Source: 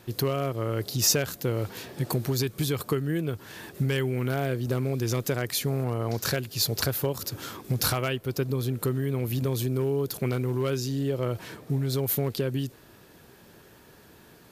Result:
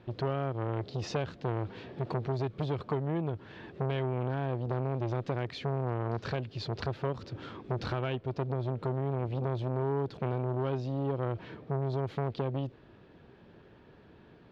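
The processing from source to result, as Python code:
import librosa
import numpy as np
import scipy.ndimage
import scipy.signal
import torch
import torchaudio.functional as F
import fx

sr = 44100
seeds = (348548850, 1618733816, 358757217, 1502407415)

y = scipy.signal.sosfilt(scipy.signal.butter(4, 3400.0, 'lowpass', fs=sr, output='sos'), x)
y = fx.peak_eq(y, sr, hz=2100.0, db=-6.0, octaves=2.8)
y = fx.transformer_sat(y, sr, knee_hz=640.0)
y = F.gain(torch.from_numpy(y), -1.0).numpy()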